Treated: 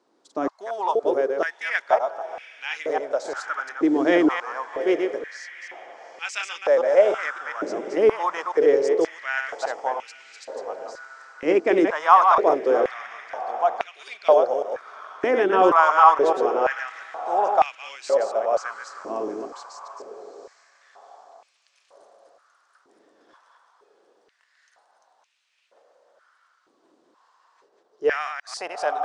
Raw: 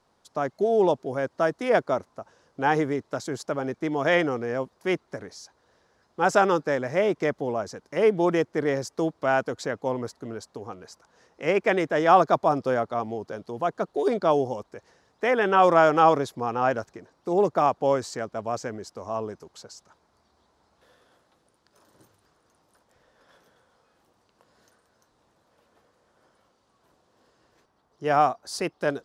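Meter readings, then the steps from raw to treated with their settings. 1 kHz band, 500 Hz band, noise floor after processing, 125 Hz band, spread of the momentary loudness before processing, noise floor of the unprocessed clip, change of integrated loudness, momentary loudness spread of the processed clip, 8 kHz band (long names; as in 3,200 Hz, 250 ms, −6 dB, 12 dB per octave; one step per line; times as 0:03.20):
+3.5 dB, +2.5 dB, −66 dBFS, below −15 dB, 17 LU, −68 dBFS, +2.5 dB, 19 LU, can't be measured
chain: delay that plays each chunk backwards 142 ms, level −4.5 dB
Butterworth low-pass 9,100 Hz 36 dB per octave
feedback delay with all-pass diffusion 772 ms, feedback 48%, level −13.5 dB
high-pass on a step sequencer 2.1 Hz 310–2,500 Hz
level −2.5 dB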